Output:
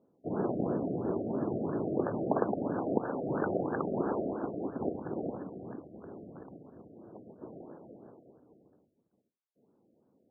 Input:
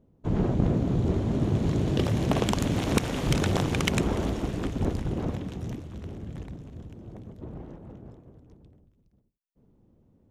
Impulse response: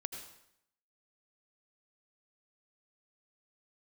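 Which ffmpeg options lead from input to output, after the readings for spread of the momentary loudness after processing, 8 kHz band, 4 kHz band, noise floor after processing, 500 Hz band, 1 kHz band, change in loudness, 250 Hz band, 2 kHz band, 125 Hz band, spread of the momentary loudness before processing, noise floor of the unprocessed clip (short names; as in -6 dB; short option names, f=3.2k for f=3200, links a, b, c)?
19 LU, under -40 dB, under -40 dB, -77 dBFS, -1.0 dB, -2.0 dB, -6.5 dB, -6.0 dB, -10.5 dB, -15.5 dB, 18 LU, -66 dBFS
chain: -af "highpass=320,lowpass=5.4k,afftfilt=real='re*lt(b*sr/1024,720*pow(1800/720,0.5+0.5*sin(2*PI*3*pts/sr)))':imag='im*lt(b*sr/1024,720*pow(1800/720,0.5+0.5*sin(2*PI*3*pts/sr)))':win_size=1024:overlap=0.75"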